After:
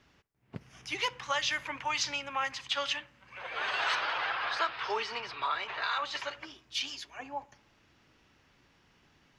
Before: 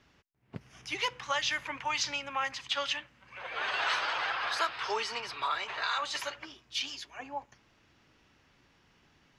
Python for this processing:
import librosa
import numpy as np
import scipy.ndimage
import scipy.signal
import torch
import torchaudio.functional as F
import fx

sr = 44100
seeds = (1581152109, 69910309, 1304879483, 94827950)

y = fx.lowpass(x, sr, hz=4400.0, slope=12, at=(3.95, 6.31))
y = fx.echo_filtered(y, sr, ms=60, feedback_pct=57, hz=2000.0, wet_db=-23)